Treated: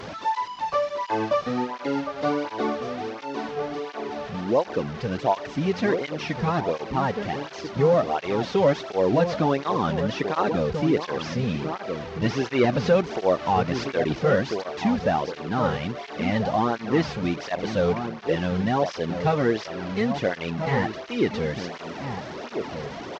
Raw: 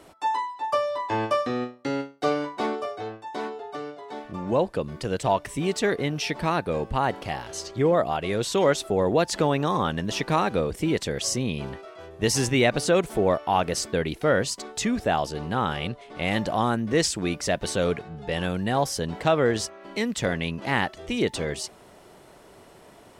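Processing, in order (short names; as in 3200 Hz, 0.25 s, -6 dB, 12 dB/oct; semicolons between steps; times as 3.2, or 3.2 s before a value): delta modulation 32 kbps, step -29.5 dBFS; high shelf 3700 Hz -10 dB; outdoor echo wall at 230 m, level -7 dB; 12.64–14.19 upward compressor, threshold -19 dBFS; tape flanging out of phase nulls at 1.4 Hz, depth 3.5 ms; gain +3.5 dB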